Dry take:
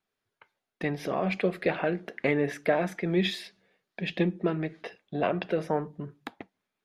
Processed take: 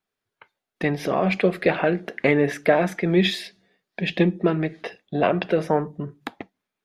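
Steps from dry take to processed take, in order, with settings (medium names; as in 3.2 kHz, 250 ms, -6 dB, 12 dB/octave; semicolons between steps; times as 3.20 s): spectral noise reduction 7 dB; trim +7 dB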